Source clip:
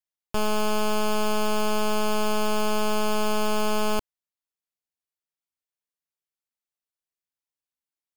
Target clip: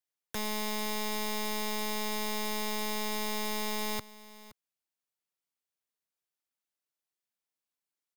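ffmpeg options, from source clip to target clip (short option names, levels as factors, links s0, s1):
-filter_complex "[0:a]highpass=130,acrossover=split=390|3000[s0][s1][s2];[s1]acompressor=threshold=0.0158:ratio=3[s3];[s0][s3][s2]amix=inputs=3:normalize=0,aeval=exprs='(mod(25.1*val(0)+1,2)-1)/25.1':c=same,acrusher=bits=3:mode=log:mix=0:aa=0.000001,asplit=2[s4][s5];[s5]aecho=0:1:519:0.126[s6];[s4][s6]amix=inputs=2:normalize=0"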